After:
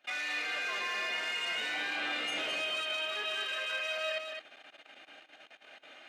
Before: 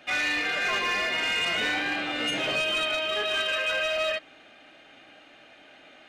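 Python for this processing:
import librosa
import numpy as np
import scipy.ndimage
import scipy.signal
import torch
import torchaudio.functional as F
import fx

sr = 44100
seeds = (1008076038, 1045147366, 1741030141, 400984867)

y = fx.highpass(x, sr, hz=620.0, slope=6)
y = fx.level_steps(y, sr, step_db=18)
y = y + 10.0 ** (-5.5 / 20.0) * np.pad(y, (int(211 * sr / 1000.0), 0))[:len(y)]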